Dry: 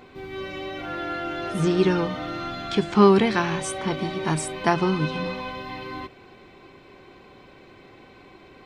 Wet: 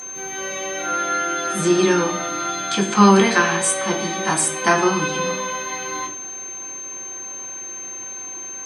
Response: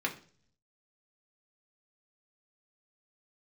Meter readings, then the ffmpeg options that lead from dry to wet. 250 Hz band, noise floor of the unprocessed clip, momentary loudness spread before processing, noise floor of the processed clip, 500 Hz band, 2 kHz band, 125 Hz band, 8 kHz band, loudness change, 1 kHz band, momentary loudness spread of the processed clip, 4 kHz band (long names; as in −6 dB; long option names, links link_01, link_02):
+3.5 dB, −50 dBFS, 17 LU, −33 dBFS, +2.5 dB, +8.5 dB, +0.5 dB, +18.0 dB, +3.5 dB, +6.5 dB, 14 LU, +7.0 dB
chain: -filter_complex "[0:a]aeval=exprs='val(0)+0.00891*sin(2*PI*6300*n/s)':channel_layout=same,bass=frequency=250:gain=-10,treble=frequency=4000:gain=15[link_01];[1:a]atrim=start_sample=2205,asetrate=30870,aresample=44100[link_02];[link_01][link_02]afir=irnorm=-1:irlink=0,volume=-2dB"